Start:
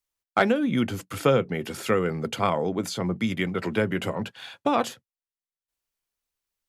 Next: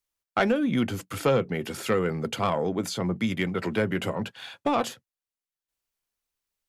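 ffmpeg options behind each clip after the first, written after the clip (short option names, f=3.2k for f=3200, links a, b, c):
-af "asoftclip=type=tanh:threshold=-13.5dB"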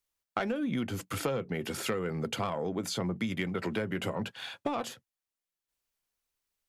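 -af "acompressor=threshold=-29dB:ratio=6"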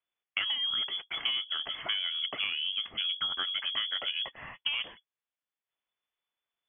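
-af "lowpass=f=3k:t=q:w=0.5098,lowpass=f=3k:t=q:w=0.6013,lowpass=f=3k:t=q:w=0.9,lowpass=f=3k:t=q:w=2.563,afreqshift=-3500"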